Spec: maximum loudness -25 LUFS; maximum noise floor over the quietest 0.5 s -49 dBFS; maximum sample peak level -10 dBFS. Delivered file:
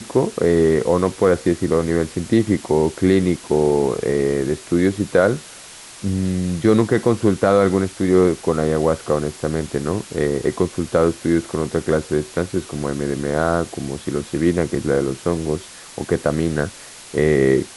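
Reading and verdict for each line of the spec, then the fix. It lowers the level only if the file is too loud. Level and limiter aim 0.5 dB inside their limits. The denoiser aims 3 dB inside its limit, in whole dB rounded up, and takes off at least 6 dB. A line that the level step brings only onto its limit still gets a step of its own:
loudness -19.5 LUFS: fail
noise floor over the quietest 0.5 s -40 dBFS: fail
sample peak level -3.5 dBFS: fail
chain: denoiser 6 dB, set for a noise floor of -40 dBFS; gain -6 dB; limiter -10.5 dBFS

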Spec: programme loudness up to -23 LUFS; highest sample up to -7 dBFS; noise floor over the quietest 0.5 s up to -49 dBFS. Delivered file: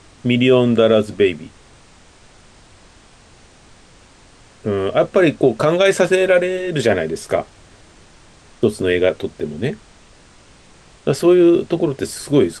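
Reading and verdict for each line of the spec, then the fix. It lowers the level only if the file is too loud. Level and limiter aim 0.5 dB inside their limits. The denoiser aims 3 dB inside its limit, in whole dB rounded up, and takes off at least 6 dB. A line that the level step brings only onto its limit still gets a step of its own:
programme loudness -16.5 LUFS: fail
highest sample -3.0 dBFS: fail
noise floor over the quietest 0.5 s -47 dBFS: fail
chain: gain -7 dB

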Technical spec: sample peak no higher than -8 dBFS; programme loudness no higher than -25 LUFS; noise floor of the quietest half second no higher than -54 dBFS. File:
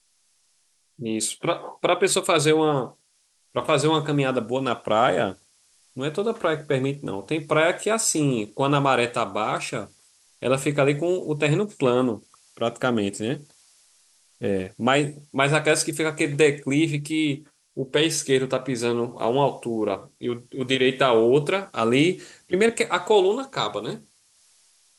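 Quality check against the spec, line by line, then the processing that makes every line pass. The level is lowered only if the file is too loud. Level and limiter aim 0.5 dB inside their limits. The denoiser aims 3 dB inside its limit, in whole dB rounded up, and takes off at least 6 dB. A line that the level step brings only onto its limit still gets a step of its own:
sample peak -4.5 dBFS: fail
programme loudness -23.0 LUFS: fail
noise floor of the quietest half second -66 dBFS: OK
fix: gain -2.5 dB; limiter -8.5 dBFS

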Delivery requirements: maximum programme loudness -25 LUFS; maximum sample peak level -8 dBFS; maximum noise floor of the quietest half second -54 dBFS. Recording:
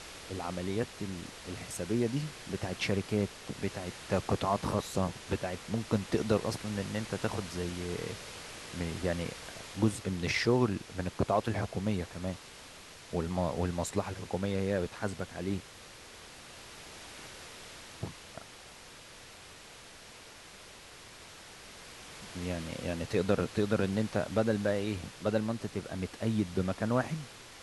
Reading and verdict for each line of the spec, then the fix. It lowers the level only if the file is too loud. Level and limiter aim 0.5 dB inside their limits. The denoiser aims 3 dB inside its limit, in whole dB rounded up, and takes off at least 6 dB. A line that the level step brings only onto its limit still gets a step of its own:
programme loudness -34.0 LUFS: OK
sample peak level -13.0 dBFS: OK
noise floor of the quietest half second -51 dBFS: fail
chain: denoiser 6 dB, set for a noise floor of -51 dBFS

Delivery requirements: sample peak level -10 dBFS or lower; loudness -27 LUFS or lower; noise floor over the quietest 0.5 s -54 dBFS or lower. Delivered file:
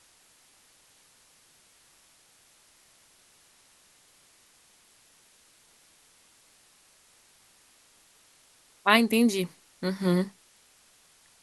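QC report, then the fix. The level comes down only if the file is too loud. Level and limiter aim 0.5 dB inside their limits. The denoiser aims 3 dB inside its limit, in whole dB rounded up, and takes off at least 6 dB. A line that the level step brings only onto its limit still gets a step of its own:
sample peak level -4.5 dBFS: fail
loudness -25.5 LUFS: fail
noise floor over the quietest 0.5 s -61 dBFS: OK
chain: gain -2 dB; limiter -10.5 dBFS

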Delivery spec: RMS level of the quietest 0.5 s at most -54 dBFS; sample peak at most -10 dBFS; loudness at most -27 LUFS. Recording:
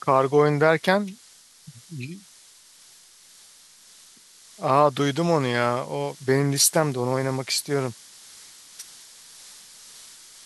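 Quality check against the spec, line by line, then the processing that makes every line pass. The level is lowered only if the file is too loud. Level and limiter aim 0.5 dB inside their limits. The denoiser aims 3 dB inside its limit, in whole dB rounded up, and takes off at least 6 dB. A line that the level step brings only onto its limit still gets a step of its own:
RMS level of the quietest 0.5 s -52 dBFS: fail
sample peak -4.5 dBFS: fail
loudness -22.0 LUFS: fail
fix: gain -5.5 dB; limiter -10.5 dBFS

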